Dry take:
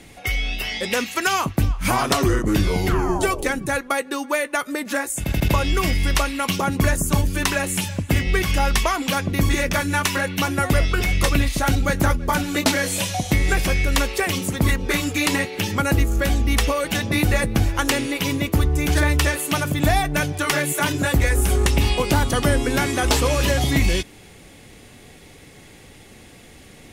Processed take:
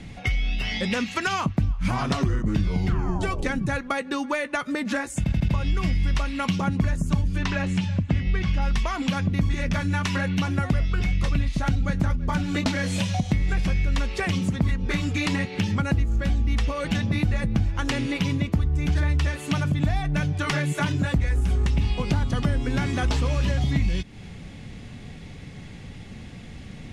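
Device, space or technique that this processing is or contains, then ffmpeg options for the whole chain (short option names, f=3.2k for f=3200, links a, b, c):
jukebox: -filter_complex "[0:a]lowpass=5.4k,lowshelf=f=260:t=q:w=1.5:g=8,acompressor=threshold=-23dB:ratio=3,asettb=1/sr,asplit=3[a][b][c];[a]atrim=end=7.384[d];[b]atrim=start=7.38:end=8.62,asetpts=PTS-STARTPTS,afade=t=in:d=0.004:c=qsin,afade=t=out:st=1.236:d=0.004:c=qsin,lowpass=5.5k[e];[c]atrim=start=8.616[f];[d][e]acrossfade=d=0.004:c1=hsin:c2=qsin[g];[g][f]acrossfade=d=0.004:c1=qsin:c2=hsin"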